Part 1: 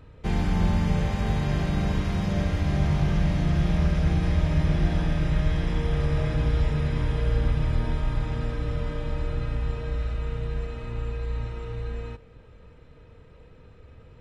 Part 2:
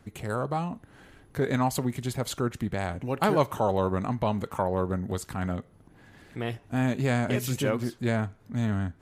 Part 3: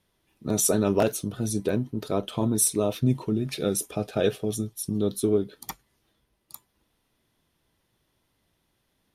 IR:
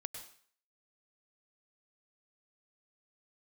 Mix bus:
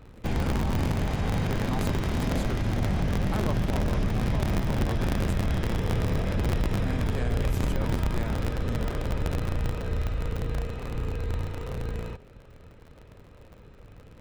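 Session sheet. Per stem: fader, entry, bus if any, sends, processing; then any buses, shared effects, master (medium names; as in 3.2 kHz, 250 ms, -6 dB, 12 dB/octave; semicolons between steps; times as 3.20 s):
0.0 dB, 0.00 s, no send, cycle switcher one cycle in 3, inverted
-8.5 dB, 0.10 s, no send, steep high-pass 190 Hz
mute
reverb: none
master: peak limiter -18 dBFS, peak gain reduction 8.5 dB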